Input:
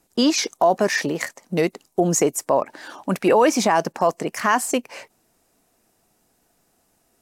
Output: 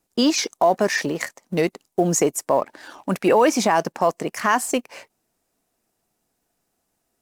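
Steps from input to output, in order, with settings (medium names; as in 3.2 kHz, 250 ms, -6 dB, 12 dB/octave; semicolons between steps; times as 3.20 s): companding laws mixed up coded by A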